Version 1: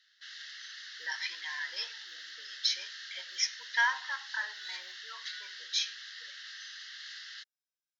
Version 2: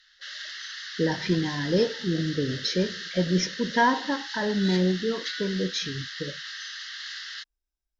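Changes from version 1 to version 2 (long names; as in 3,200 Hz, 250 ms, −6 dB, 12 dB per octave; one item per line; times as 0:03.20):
background +8.0 dB
master: remove high-pass filter 1,300 Hz 24 dB per octave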